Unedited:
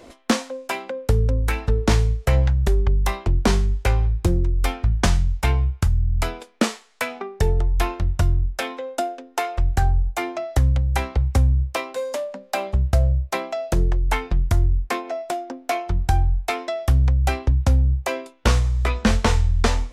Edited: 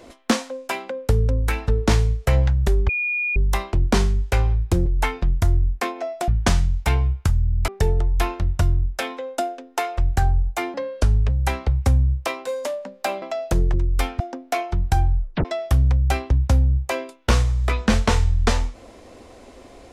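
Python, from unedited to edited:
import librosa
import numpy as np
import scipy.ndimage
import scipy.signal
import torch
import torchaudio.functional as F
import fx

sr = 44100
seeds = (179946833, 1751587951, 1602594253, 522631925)

y = fx.edit(x, sr, fx.insert_tone(at_s=2.89, length_s=0.47, hz=2440.0, db=-20.5),
    fx.swap(start_s=4.39, length_s=0.46, other_s=13.95, other_length_s=1.42),
    fx.cut(start_s=6.25, length_s=1.03),
    fx.speed_span(start_s=10.34, length_s=0.44, speed=0.8),
    fx.cut(start_s=12.71, length_s=0.72),
    fx.tape_stop(start_s=16.37, length_s=0.25), tone=tone)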